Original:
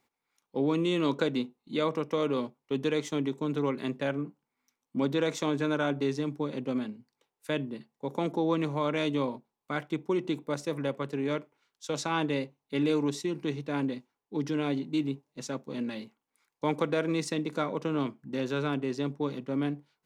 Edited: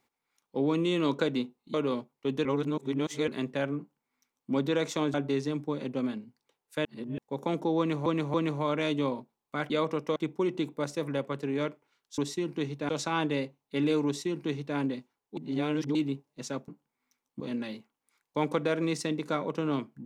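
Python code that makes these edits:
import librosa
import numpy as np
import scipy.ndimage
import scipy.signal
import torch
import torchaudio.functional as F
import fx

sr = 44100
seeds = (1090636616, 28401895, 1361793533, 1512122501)

y = fx.edit(x, sr, fx.move(start_s=1.74, length_s=0.46, to_s=9.86),
    fx.reverse_span(start_s=2.91, length_s=0.83),
    fx.duplicate(start_s=4.25, length_s=0.72, to_s=15.67),
    fx.cut(start_s=5.6, length_s=0.26),
    fx.reverse_span(start_s=7.57, length_s=0.33),
    fx.repeat(start_s=8.5, length_s=0.28, count=3),
    fx.duplicate(start_s=13.05, length_s=0.71, to_s=11.88),
    fx.reverse_span(start_s=14.36, length_s=0.58), tone=tone)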